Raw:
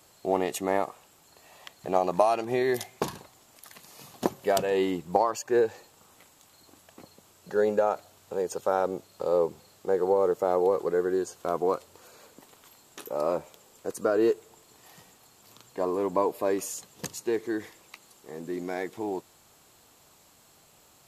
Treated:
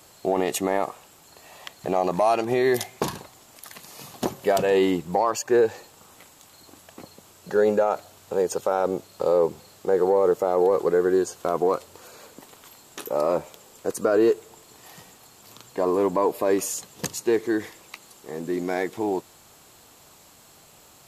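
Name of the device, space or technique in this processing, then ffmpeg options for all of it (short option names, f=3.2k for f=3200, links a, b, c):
soft clipper into limiter: -af "asoftclip=type=tanh:threshold=-8.5dB,alimiter=limit=-18dB:level=0:latency=1:release=30,volume=6.5dB"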